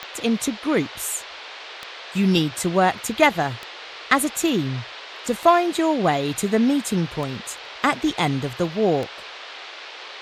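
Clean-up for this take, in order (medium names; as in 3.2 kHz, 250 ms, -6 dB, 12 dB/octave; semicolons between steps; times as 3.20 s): de-click; noise print and reduce 29 dB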